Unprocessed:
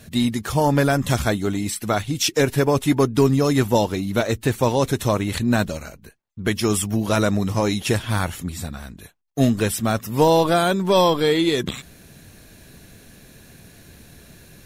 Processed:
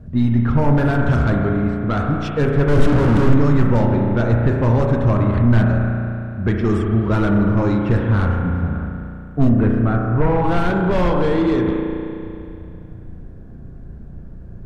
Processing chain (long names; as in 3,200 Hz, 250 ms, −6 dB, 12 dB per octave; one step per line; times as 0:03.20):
0:02.68–0:03.34: sign of each sample alone
parametric band 1,400 Hz +9.5 dB 0.81 octaves
low-pass that shuts in the quiet parts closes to 800 Hz, open at −11.5 dBFS
convolution reverb RT60 2.6 s, pre-delay 34 ms, DRR 2 dB
sine wavefolder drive 9 dB, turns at −1 dBFS
0:09.49–0:10.44: low-pass filter 2,200 Hz 12 dB per octave
bit reduction 8 bits
spectral tilt −4 dB per octave
level −17 dB